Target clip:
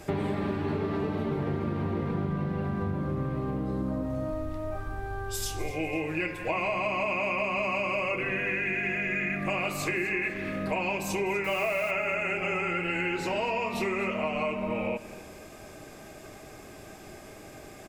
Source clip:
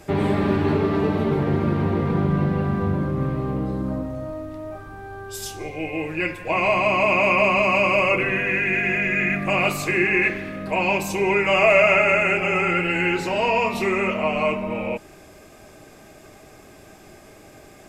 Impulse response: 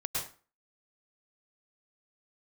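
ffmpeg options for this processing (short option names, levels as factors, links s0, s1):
-filter_complex "[0:a]asplit=3[s0][s1][s2];[s0]afade=t=out:st=4.32:d=0.02[s3];[s1]asubboost=boost=3.5:cutoff=84,afade=t=in:st=4.32:d=0.02,afade=t=out:st=5.72:d=0.02[s4];[s2]afade=t=in:st=5.72:d=0.02[s5];[s3][s4][s5]amix=inputs=3:normalize=0,acompressor=threshold=0.0447:ratio=6,asettb=1/sr,asplit=3[s6][s7][s8];[s6]atrim=end=11.444[s9];[s7]atrim=start=11.44:end=11.91,asetpts=PTS-STARTPTS,afade=t=in:d=0.004:c=qsin,afade=t=out:st=0.466:d=0.004:c=qsin,acrusher=bits=6:mix=0:aa=0.5[s10];[s8]atrim=start=11.906[s11];[s9][s10]acrossfade=d=0.004:c1=hsin:c2=qsin[s12];[s12][s11]acrossfade=d=0.004:c1=qsin:c2=hsin,aecho=1:1:248|496|744:0.141|0.0523|0.0193"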